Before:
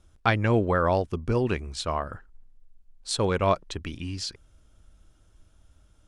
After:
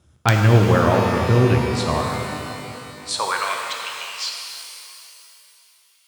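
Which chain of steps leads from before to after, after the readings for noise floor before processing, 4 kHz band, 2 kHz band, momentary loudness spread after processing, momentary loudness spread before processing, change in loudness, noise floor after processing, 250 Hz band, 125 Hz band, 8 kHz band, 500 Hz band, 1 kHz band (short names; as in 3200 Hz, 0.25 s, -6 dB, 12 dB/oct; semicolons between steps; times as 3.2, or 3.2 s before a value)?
-61 dBFS, +8.5 dB, +7.5 dB, 19 LU, 13 LU, +7.0 dB, -57 dBFS, +7.5 dB, +11.0 dB, +8.0 dB, +5.0 dB, +6.5 dB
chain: wrapped overs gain 7.5 dB; high-pass sweep 110 Hz -> 2700 Hz, 2.26–3.71; shimmer reverb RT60 2.9 s, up +12 st, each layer -8 dB, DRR 1 dB; gain +3 dB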